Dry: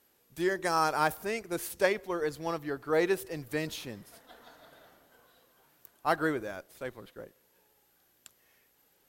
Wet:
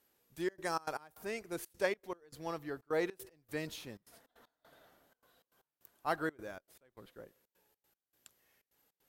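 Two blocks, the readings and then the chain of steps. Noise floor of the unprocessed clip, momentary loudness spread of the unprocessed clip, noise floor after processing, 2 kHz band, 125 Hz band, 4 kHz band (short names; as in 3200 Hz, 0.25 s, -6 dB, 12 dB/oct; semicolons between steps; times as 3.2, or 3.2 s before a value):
-69 dBFS, 16 LU, under -85 dBFS, -8.0 dB, -8.5 dB, -8.0 dB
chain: step gate "xxxxx.xx.x.." 155 bpm -24 dB; gain -6.5 dB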